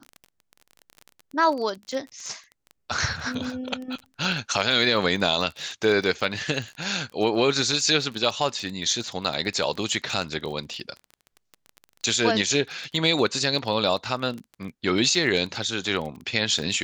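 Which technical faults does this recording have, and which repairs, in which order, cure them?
crackle 25/s -31 dBFS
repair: de-click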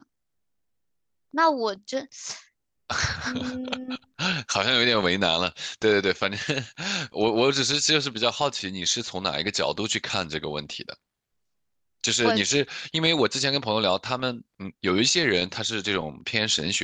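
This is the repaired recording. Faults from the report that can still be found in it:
none

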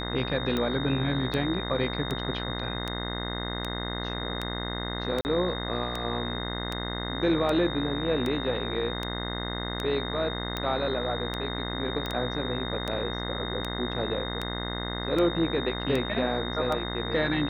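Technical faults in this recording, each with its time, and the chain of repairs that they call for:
buzz 60 Hz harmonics 35 -34 dBFS
tick 78 rpm -16 dBFS
tone 3700 Hz -36 dBFS
5.21–5.25 gap 39 ms
12.06 pop -18 dBFS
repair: de-click; notch 3700 Hz, Q 30; de-hum 60 Hz, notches 35; interpolate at 5.21, 39 ms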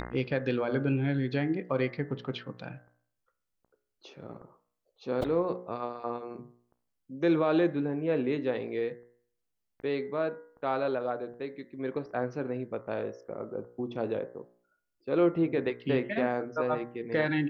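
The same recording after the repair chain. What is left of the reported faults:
none

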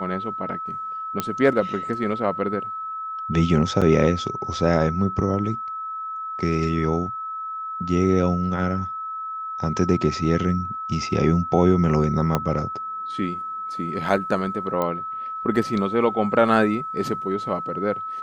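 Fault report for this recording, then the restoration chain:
tone 1300 Hz -28 dBFS
1.2 pop -8 dBFS
3.81–3.82 gap 6.1 ms
12.35 pop -7 dBFS
14.82 pop -12 dBFS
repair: de-click; notch 1300 Hz, Q 30; interpolate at 3.81, 6.1 ms

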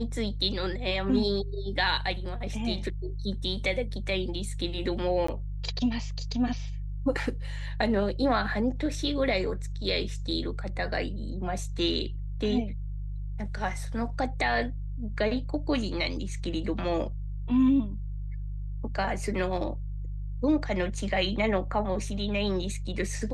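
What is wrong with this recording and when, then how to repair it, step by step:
hum 50 Hz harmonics 3 -34 dBFS
5.27–5.28 gap 14 ms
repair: de-hum 50 Hz, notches 3; interpolate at 5.27, 14 ms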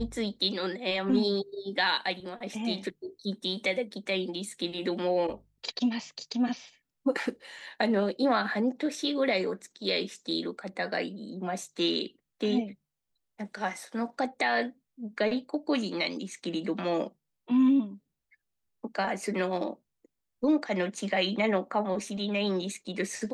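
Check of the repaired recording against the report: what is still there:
none

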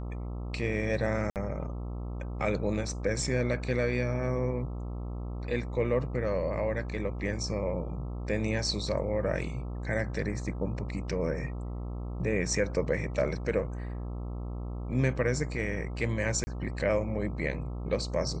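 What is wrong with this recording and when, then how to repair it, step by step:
buzz 60 Hz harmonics 22 -36 dBFS
1.3–1.36 gap 58 ms
16.44–16.47 gap 30 ms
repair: de-hum 60 Hz, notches 22; interpolate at 1.3, 58 ms; interpolate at 16.44, 30 ms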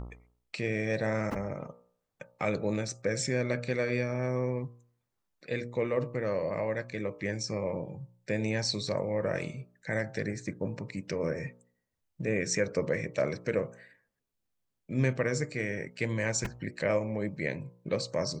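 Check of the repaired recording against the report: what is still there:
none

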